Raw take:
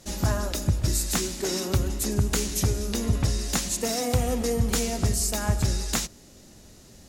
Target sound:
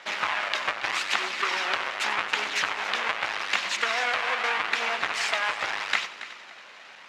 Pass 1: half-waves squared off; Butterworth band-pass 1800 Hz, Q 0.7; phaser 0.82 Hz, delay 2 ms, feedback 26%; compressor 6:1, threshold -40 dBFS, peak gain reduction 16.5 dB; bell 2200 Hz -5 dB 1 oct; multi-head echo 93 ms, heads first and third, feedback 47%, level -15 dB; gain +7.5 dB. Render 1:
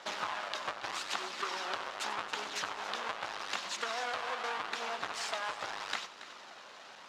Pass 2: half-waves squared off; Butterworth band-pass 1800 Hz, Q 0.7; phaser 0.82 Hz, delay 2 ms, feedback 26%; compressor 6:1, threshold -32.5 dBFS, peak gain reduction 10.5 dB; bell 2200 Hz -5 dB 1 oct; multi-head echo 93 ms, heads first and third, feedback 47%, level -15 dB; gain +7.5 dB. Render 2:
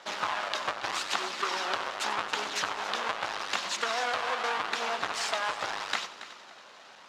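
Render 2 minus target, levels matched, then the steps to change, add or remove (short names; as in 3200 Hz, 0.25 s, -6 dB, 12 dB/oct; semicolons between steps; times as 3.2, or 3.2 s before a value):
2000 Hz band -2.5 dB
change: bell 2200 Hz +5 dB 1 oct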